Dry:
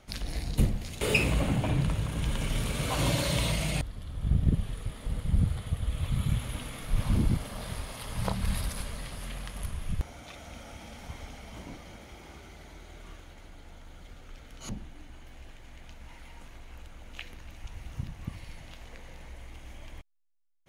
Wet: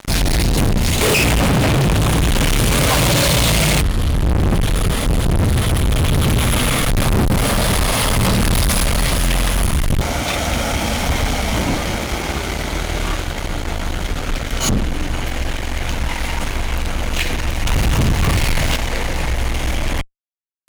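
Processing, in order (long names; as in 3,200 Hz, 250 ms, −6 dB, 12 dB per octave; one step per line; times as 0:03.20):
fuzz pedal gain 44 dB, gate −52 dBFS
0:17.67–0:18.76: power curve on the samples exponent 0.5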